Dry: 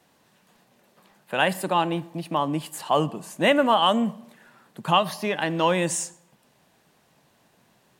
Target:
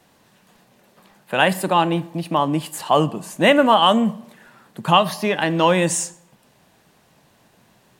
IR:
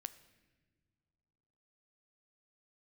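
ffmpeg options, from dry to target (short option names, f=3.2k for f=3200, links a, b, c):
-filter_complex "[0:a]asplit=2[a][b];[1:a]atrim=start_sample=2205,atrim=end_sample=3087,lowshelf=f=110:g=7.5[c];[b][c]afir=irnorm=-1:irlink=0,volume=10dB[d];[a][d]amix=inputs=2:normalize=0,volume=-4.5dB"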